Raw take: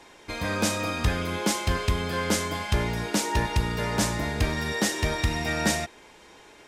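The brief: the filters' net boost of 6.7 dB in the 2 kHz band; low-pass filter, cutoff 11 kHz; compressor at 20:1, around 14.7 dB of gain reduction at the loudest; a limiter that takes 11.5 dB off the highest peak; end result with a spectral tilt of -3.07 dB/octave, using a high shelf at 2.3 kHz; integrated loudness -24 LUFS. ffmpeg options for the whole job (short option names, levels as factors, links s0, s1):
-af "lowpass=11000,equalizer=f=2000:t=o:g=5.5,highshelf=f=2300:g=5,acompressor=threshold=0.0251:ratio=20,volume=4.47,alimiter=limit=0.188:level=0:latency=1"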